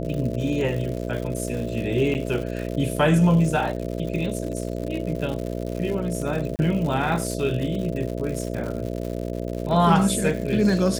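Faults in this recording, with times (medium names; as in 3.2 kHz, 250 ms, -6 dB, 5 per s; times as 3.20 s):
buzz 60 Hz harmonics 11 -29 dBFS
crackle 150 per s -30 dBFS
2.14–2.15 s: dropout 9.1 ms
6.56–6.59 s: dropout 29 ms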